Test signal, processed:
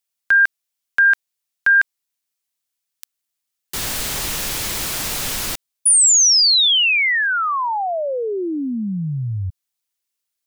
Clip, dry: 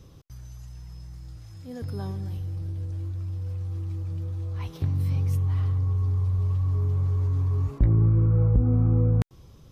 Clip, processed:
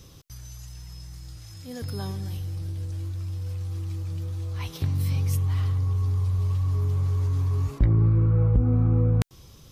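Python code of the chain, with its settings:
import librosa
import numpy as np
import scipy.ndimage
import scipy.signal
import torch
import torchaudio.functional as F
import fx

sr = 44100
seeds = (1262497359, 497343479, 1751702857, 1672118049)

y = fx.high_shelf(x, sr, hz=2000.0, db=11.5)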